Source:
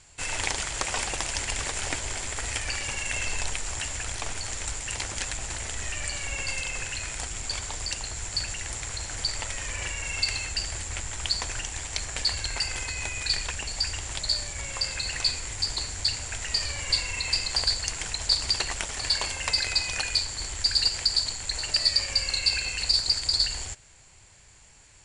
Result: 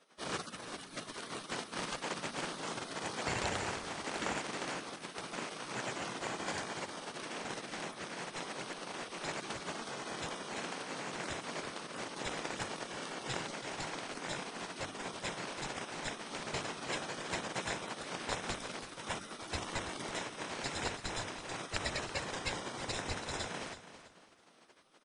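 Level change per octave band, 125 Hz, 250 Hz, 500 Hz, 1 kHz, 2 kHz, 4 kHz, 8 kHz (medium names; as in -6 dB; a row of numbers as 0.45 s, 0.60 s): -10.0 dB, +3.5 dB, +1.0 dB, -1.0 dB, -8.0 dB, -16.5 dB, -15.5 dB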